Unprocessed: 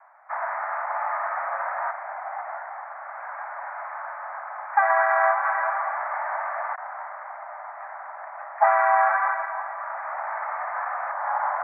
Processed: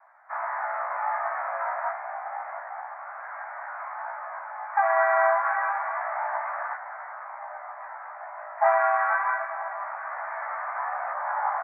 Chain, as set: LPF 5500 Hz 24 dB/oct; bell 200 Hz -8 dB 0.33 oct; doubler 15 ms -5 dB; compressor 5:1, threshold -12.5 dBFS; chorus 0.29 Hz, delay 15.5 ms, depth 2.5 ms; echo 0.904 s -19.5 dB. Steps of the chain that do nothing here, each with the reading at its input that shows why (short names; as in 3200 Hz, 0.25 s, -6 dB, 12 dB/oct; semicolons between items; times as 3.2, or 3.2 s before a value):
LPF 5500 Hz: input band ends at 2400 Hz; bell 200 Hz: input band starts at 540 Hz